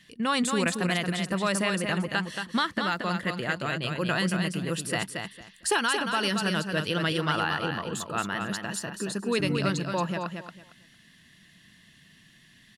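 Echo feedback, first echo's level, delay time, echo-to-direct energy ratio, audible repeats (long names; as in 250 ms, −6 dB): 21%, −5.5 dB, 227 ms, −5.5 dB, 3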